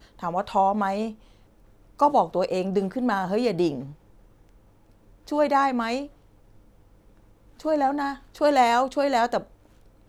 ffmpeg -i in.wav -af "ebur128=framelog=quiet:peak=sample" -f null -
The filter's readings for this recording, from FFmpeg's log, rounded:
Integrated loudness:
  I:         -24.1 LUFS
  Threshold: -36.0 LUFS
Loudness range:
  LRA:         4.1 LU
  Threshold: -46.5 LUFS
  LRA low:   -29.0 LUFS
  LRA high:  -25.0 LUFS
Sample peak:
  Peak:       -7.7 dBFS